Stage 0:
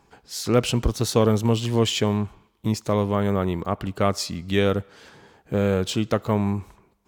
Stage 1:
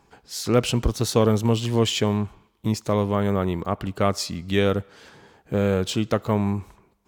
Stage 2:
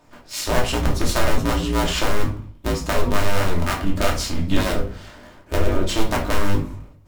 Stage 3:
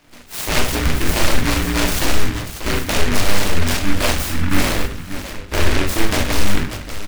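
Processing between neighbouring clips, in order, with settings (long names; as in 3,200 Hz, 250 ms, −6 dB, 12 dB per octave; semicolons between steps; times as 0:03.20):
no processing that can be heard
sub-harmonics by changed cycles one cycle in 2, inverted; downward compressor, threshold −22 dBFS, peak gain reduction 9.5 dB; rectangular room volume 300 cubic metres, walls furnished, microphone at 2.7 metres
on a send: multi-tap delay 45/589 ms −4/−9.5 dB; on the sum: short delay modulated by noise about 1,600 Hz, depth 0.28 ms; level +1 dB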